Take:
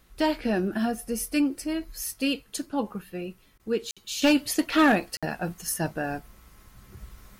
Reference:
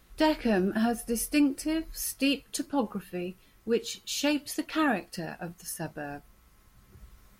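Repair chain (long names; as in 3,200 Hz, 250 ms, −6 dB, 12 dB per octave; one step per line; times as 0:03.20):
clipped peaks rebuilt −13 dBFS
repair the gap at 0:03.91/0:05.17, 56 ms
repair the gap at 0:03.58, 15 ms
level correction −7.5 dB, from 0:04.22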